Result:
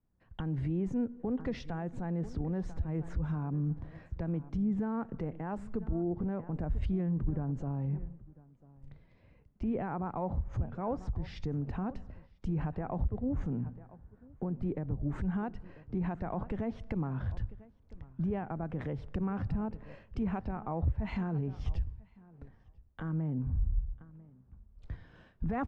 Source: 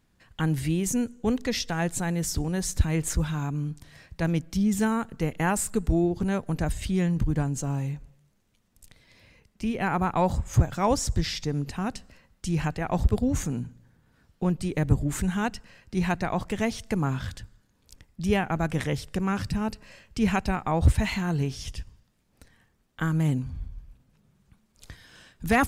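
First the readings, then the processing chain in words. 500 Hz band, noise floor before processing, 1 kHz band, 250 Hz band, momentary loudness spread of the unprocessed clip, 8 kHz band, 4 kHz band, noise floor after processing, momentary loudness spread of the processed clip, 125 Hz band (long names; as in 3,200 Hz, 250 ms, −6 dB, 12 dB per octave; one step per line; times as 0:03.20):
−9.0 dB, −68 dBFS, −11.5 dB, −7.5 dB, 10 LU, below −30 dB, below −20 dB, −63 dBFS, 12 LU, −7.5 dB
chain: downward compressor 8 to 1, threshold −34 dBFS, peak gain reduction 19.5 dB
low-pass filter 1,000 Hz 12 dB per octave
repeating echo 995 ms, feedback 16%, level −18.5 dB
brickwall limiter −34.5 dBFS, peak gain reduction 10 dB
multiband upward and downward expander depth 70%
level +8.5 dB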